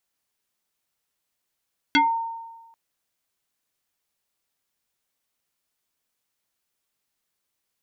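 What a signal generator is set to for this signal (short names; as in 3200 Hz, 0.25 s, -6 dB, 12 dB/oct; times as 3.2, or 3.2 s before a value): FM tone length 0.79 s, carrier 915 Hz, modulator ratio 1.31, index 2.8, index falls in 0.21 s exponential, decay 1.24 s, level -13 dB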